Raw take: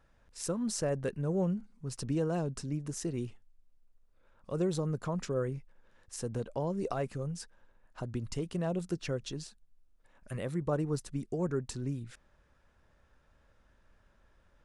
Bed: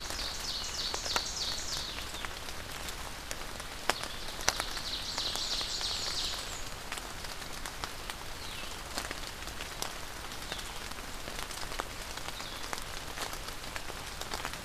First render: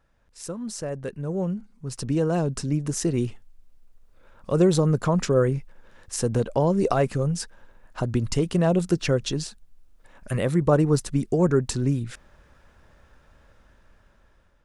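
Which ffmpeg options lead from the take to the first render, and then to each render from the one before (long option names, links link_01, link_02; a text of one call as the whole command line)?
ffmpeg -i in.wav -af "dynaudnorm=framelen=900:gausssize=5:maxgain=12.5dB" out.wav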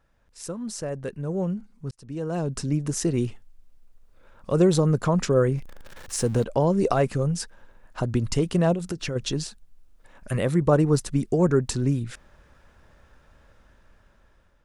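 ffmpeg -i in.wav -filter_complex "[0:a]asettb=1/sr,asplit=3[link_01][link_02][link_03];[link_01]atrim=end=5.584[link_04];[link_02]atrim=start=5.58:end=6.44,asetpts=PTS-STARTPTS,afade=type=in:duration=0.004:curve=qsin,afade=type=out:start_time=0.856:duration=0.004:curve=qsin,aeval=exprs='val(0)+0.5*0.0112*sgn(val(0))':channel_layout=same[link_05];[link_03]atrim=start=6.436[link_06];[link_04][link_05]acrossfade=duration=0.004:curve1=hsin:curve2=qsin[link_07];[link_07][link_06]acrossfade=duration=0.004:curve1=qsin:curve2=hsin,asplit=3[link_08][link_09][link_10];[link_08]afade=type=out:start_time=8.73:duration=0.02[link_11];[link_09]acompressor=threshold=-26dB:ratio=5:attack=3.2:release=140:knee=1:detection=peak,afade=type=in:start_time=8.73:duration=0.02,afade=type=out:start_time=9.15:duration=0.02[link_12];[link_10]afade=type=in:start_time=9.15:duration=0.02[link_13];[link_11][link_12][link_13]amix=inputs=3:normalize=0,asplit=2[link_14][link_15];[link_14]atrim=end=1.91,asetpts=PTS-STARTPTS,afade=type=out:start_time=1.906:duration=0.004:curve=hsin[link_16];[link_15]atrim=start=1.91,asetpts=PTS-STARTPTS,afade=type=in:duration=0.72[link_17];[link_16][link_17]concat=n=2:v=0:a=1" out.wav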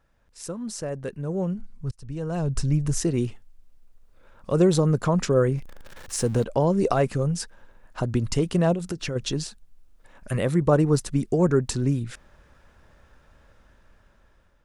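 ffmpeg -i in.wav -filter_complex "[0:a]asplit=3[link_01][link_02][link_03];[link_01]afade=type=out:start_time=1.53:duration=0.02[link_04];[link_02]asubboost=boost=8.5:cutoff=100,afade=type=in:start_time=1.53:duration=0.02,afade=type=out:start_time=3:duration=0.02[link_05];[link_03]afade=type=in:start_time=3:duration=0.02[link_06];[link_04][link_05][link_06]amix=inputs=3:normalize=0" out.wav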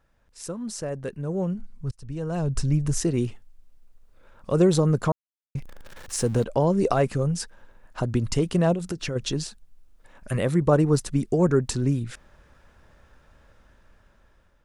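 ffmpeg -i in.wav -filter_complex "[0:a]asplit=3[link_01][link_02][link_03];[link_01]atrim=end=5.12,asetpts=PTS-STARTPTS,afade=type=out:start_time=5.116:duration=0.004:curve=hsin[link_04];[link_02]atrim=start=5.12:end=5.55,asetpts=PTS-STARTPTS,volume=0[link_05];[link_03]atrim=start=5.55,asetpts=PTS-STARTPTS,afade=type=in:duration=0.004:curve=hsin[link_06];[link_04][link_05][link_06]concat=n=3:v=0:a=1" out.wav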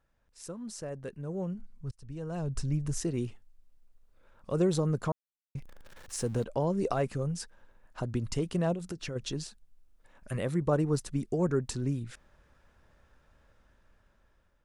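ffmpeg -i in.wav -af "volume=-8dB" out.wav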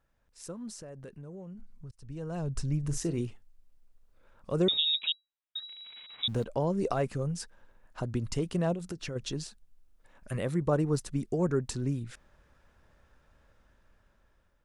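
ffmpeg -i in.wav -filter_complex "[0:a]asettb=1/sr,asplit=3[link_01][link_02][link_03];[link_01]atrim=end=0.724[link_04];[link_02]atrim=start=0.72:end=2.09,asetpts=PTS-STARTPTS,afade=type=in:duration=0.004:curve=qsin,afade=type=out:start_time=1.366:duration=0.004:curve=qsin,acompressor=threshold=-41dB:ratio=6:attack=3.2:release=140:knee=1:detection=peak[link_05];[link_03]atrim=start=2.086[link_06];[link_04][link_05]acrossfade=duration=0.004:curve1=hsin:curve2=qsin[link_07];[link_07][link_06]acrossfade=duration=0.004:curve1=qsin:curve2=hsin,asettb=1/sr,asplit=3[link_08][link_09][link_10];[link_08]atrim=end=2.794[link_11];[link_09]atrim=start=2.79:end=3.21,asetpts=PTS-STARTPTS,afade=type=in:duration=0.004:curve=qsin,afade=type=out:start_time=0.416:duration=0.004:curve=qsin,asplit=2[link_12][link_13];[link_13]adelay=42,volume=-12dB[link_14];[link_12][link_14]amix=inputs=2:normalize=0,atrim=end_sample=18522[link_15];[link_10]atrim=start=3.206[link_16];[link_11][link_15]acrossfade=duration=0.004:curve1=hsin:curve2=qsin[link_17];[link_17][link_16]acrossfade=duration=0.004:curve1=qsin:curve2=hsin,asettb=1/sr,asplit=3[link_18][link_19][link_20];[link_18]atrim=end=4.684[link_21];[link_19]atrim=start=4.68:end=6.28,asetpts=PTS-STARTPTS,afade=type=in:duration=0.004:curve=qsin,afade=type=out:start_time=1.596:duration=0.004:curve=qsin,lowpass=frequency=3300:width_type=q:width=0.5098,lowpass=frequency=3300:width_type=q:width=0.6013,lowpass=frequency=3300:width_type=q:width=0.9,lowpass=frequency=3300:width_type=q:width=2.563,afreqshift=-3900[link_22];[link_20]atrim=start=6.276[link_23];[link_21][link_22]acrossfade=duration=0.004:curve1=hsin:curve2=qsin[link_24];[link_24][link_23]acrossfade=duration=0.004:curve1=qsin:curve2=hsin" out.wav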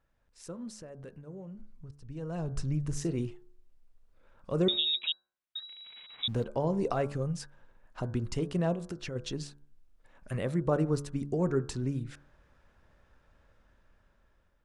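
ffmpeg -i in.wav -af "highshelf=frequency=7100:gain=-8,bandreject=frequency=71.56:width_type=h:width=4,bandreject=frequency=143.12:width_type=h:width=4,bandreject=frequency=214.68:width_type=h:width=4,bandreject=frequency=286.24:width_type=h:width=4,bandreject=frequency=357.8:width_type=h:width=4,bandreject=frequency=429.36:width_type=h:width=4,bandreject=frequency=500.92:width_type=h:width=4,bandreject=frequency=572.48:width_type=h:width=4,bandreject=frequency=644.04:width_type=h:width=4,bandreject=frequency=715.6:width_type=h:width=4,bandreject=frequency=787.16:width_type=h:width=4,bandreject=frequency=858.72:width_type=h:width=4,bandreject=frequency=930.28:width_type=h:width=4,bandreject=frequency=1001.84:width_type=h:width=4,bandreject=frequency=1073.4:width_type=h:width=4,bandreject=frequency=1144.96:width_type=h:width=4,bandreject=frequency=1216.52:width_type=h:width=4,bandreject=frequency=1288.08:width_type=h:width=4,bandreject=frequency=1359.64:width_type=h:width=4,bandreject=frequency=1431.2:width_type=h:width=4,bandreject=frequency=1502.76:width_type=h:width=4,bandreject=frequency=1574.32:width_type=h:width=4,bandreject=frequency=1645.88:width_type=h:width=4" out.wav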